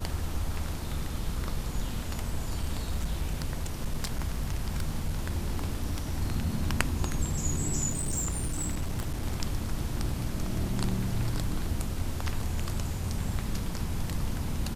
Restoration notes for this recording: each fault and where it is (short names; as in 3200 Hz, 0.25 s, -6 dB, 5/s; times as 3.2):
2.63–6.22 clipped -23.5 dBFS
7.89–9.24 clipped -26 dBFS